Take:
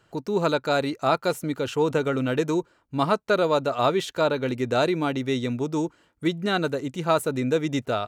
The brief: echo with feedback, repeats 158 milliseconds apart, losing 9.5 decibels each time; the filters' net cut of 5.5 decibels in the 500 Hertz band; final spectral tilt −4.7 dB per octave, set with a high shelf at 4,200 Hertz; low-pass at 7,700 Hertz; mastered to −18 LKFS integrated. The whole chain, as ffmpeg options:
ffmpeg -i in.wav -af "lowpass=7700,equalizer=frequency=500:width_type=o:gain=-7,highshelf=frequency=4200:gain=-5.5,aecho=1:1:158|316|474|632:0.335|0.111|0.0365|0.012,volume=9.5dB" out.wav

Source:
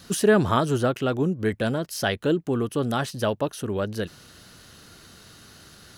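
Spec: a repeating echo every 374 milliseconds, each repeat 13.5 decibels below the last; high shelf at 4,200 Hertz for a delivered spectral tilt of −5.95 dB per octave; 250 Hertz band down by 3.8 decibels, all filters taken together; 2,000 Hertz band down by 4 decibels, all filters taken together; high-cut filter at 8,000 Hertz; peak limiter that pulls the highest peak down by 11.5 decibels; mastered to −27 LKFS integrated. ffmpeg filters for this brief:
ffmpeg -i in.wav -af "lowpass=8000,equalizer=frequency=250:width_type=o:gain=-5,equalizer=frequency=2000:width_type=o:gain=-4.5,highshelf=frequency=4200:gain=-6,alimiter=limit=-21dB:level=0:latency=1,aecho=1:1:374|748:0.211|0.0444,volume=3.5dB" out.wav

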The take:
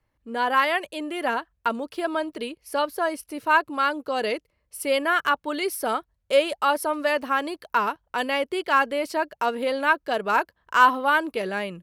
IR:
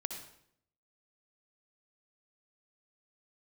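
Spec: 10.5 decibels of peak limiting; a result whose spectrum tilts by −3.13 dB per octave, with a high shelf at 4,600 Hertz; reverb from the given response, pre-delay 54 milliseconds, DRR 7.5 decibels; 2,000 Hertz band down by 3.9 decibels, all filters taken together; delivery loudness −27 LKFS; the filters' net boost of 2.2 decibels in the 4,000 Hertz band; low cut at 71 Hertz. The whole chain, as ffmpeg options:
-filter_complex "[0:a]highpass=71,equalizer=frequency=2000:width_type=o:gain=-7.5,equalizer=frequency=4000:width_type=o:gain=4,highshelf=frequency=4600:gain=6,alimiter=limit=-17dB:level=0:latency=1,asplit=2[link_01][link_02];[1:a]atrim=start_sample=2205,adelay=54[link_03];[link_02][link_03]afir=irnorm=-1:irlink=0,volume=-7.5dB[link_04];[link_01][link_04]amix=inputs=2:normalize=0,volume=0.5dB"

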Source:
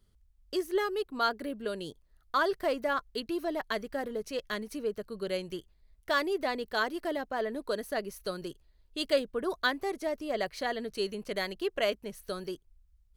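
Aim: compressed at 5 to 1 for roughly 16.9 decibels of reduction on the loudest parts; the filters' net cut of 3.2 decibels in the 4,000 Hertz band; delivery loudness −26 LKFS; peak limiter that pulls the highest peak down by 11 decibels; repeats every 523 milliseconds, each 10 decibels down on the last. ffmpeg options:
ffmpeg -i in.wav -af "equalizer=frequency=4000:width_type=o:gain=-4,acompressor=threshold=-41dB:ratio=5,alimiter=level_in=14.5dB:limit=-24dB:level=0:latency=1,volume=-14.5dB,aecho=1:1:523|1046|1569|2092:0.316|0.101|0.0324|0.0104,volume=22dB" out.wav

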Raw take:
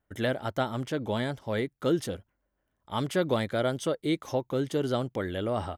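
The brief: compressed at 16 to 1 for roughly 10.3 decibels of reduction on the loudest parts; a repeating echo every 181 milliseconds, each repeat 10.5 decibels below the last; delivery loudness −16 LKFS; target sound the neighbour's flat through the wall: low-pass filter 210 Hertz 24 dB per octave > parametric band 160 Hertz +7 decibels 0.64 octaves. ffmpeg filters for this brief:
ffmpeg -i in.wav -af "acompressor=threshold=-32dB:ratio=16,lowpass=frequency=210:width=0.5412,lowpass=frequency=210:width=1.3066,equalizer=frequency=160:width_type=o:width=0.64:gain=7,aecho=1:1:181|362|543:0.299|0.0896|0.0269,volume=25.5dB" out.wav

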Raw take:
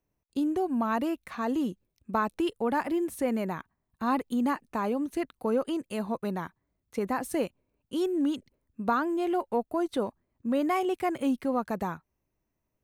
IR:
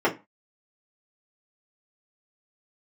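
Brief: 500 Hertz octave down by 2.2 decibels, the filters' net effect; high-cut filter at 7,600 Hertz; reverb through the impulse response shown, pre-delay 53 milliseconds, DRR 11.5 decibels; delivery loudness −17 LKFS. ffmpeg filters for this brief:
-filter_complex "[0:a]lowpass=7600,equalizer=frequency=500:width_type=o:gain=-3,asplit=2[link_01][link_02];[1:a]atrim=start_sample=2205,adelay=53[link_03];[link_02][link_03]afir=irnorm=-1:irlink=0,volume=-27.5dB[link_04];[link_01][link_04]amix=inputs=2:normalize=0,volume=14dB"

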